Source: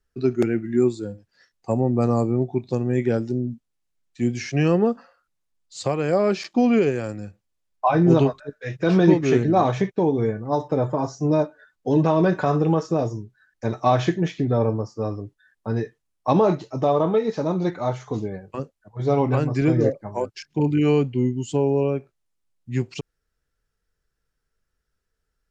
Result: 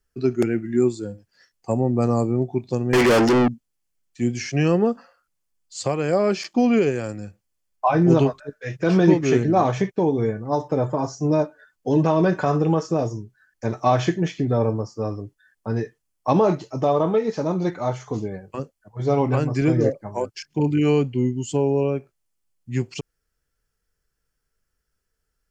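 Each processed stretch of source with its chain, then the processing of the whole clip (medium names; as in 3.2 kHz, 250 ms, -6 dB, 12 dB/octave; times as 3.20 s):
2.93–3.48 s: treble shelf 6.5 kHz -11 dB + hum notches 50/100/150/200 Hz + overdrive pedal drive 39 dB, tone 3.9 kHz, clips at -9.5 dBFS
whole clip: treble shelf 5.9 kHz +7 dB; band-stop 3.8 kHz, Q 11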